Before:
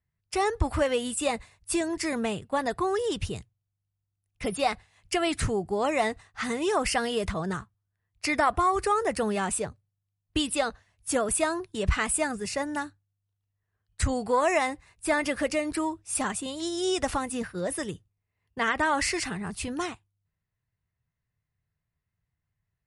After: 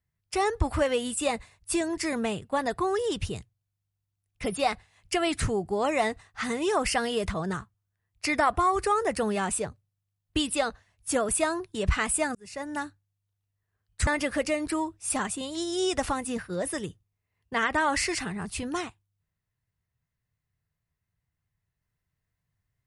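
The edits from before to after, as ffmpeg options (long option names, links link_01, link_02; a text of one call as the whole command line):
ffmpeg -i in.wav -filter_complex "[0:a]asplit=3[link_01][link_02][link_03];[link_01]atrim=end=12.35,asetpts=PTS-STARTPTS,afade=type=out:start_time=12.346:duration=0.004:curve=hsin[link_04];[link_02]atrim=start=12.35:end=14.072,asetpts=PTS-STARTPTS,afade=type=in:duration=0.49[link_05];[link_03]atrim=start=15.118[link_06];[link_04][link_05]concat=n=2:v=0:a=1[link_07];[link_07][link_06]acrossfade=duration=0.004:curve1=hsin:curve2=hsin" out.wav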